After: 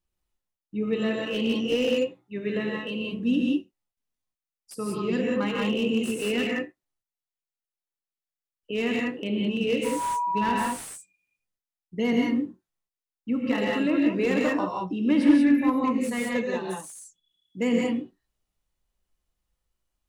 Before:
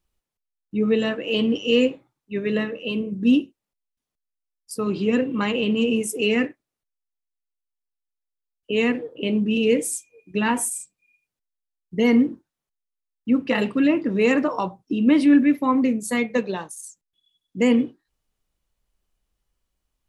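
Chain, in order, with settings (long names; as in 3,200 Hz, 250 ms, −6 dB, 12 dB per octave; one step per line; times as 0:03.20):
0:09.84–0:10.51: steady tone 970 Hz −26 dBFS
reverb whose tail is shaped and stops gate 210 ms rising, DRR −2 dB
slew-rate limiting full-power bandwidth 210 Hz
level −7 dB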